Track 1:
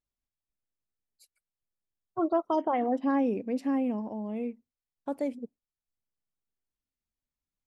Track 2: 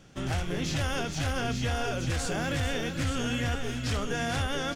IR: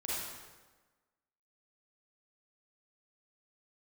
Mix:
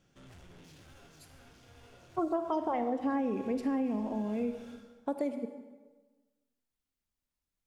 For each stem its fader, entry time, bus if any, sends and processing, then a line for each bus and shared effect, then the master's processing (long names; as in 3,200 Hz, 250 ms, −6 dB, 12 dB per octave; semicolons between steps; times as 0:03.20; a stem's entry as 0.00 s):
+0.5 dB, 0.00 s, send −10.5 dB, no processing
−17.0 dB, 0.00 s, send −5.5 dB, soft clipping −37.5 dBFS, distortion −7 dB; automatic ducking −10 dB, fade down 0.95 s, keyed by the first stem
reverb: on, RT60 1.3 s, pre-delay 33 ms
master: downward compressor 6 to 1, threshold −28 dBFS, peak gain reduction 9.5 dB